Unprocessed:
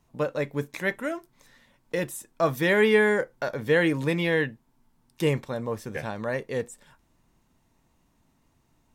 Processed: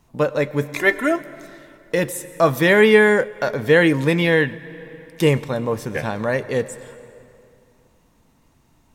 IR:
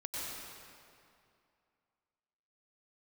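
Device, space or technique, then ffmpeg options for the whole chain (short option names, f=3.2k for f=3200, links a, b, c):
compressed reverb return: -filter_complex "[0:a]asplit=2[a][b];[1:a]atrim=start_sample=2205[c];[b][c]afir=irnorm=-1:irlink=0,acompressor=threshold=-25dB:ratio=6,volume=-14dB[d];[a][d]amix=inputs=2:normalize=0,asettb=1/sr,asplit=3[e][f][g];[e]atrim=end=0.764[h];[f]atrim=start=0.76:end=1.16,asetpts=PTS-STARTPTS,afade=t=in:d=0.004:c=qsin,afade=t=out:st=0.396:d=0.004:c=qsin,aecho=1:1:2.9:0.83,atrim=end_sample=17640[i];[g]atrim=start=1.156[j];[h][i]acrossfade=d=0.004:c1=hsin:c2=qsin[k];[k][j]acrossfade=d=0.004:c1=qsin:c2=hsin,volume=7dB"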